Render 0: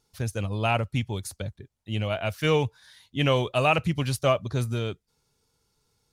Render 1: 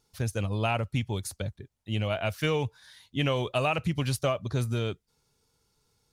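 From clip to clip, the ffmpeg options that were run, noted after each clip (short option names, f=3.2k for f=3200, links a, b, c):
-af "acompressor=threshold=-23dB:ratio=6"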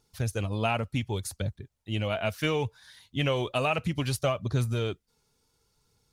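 -af "aphaser=in_gain=1:out_gain=1:delay=4.9:decay=0.28:speed=0.67:type=triangular"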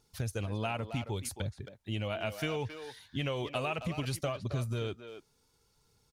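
-filter_complex "[0:a]acompressor=threshold=-34dB:ratio=2.5,asplit=2[a][b];[b]adelay=270,highpass=300,lowpass=3.4k,asoftclip=type=hard:threshold=-30.5dB,volume=-8dB[c];[a][c]amix=inputs=2:normalize=0"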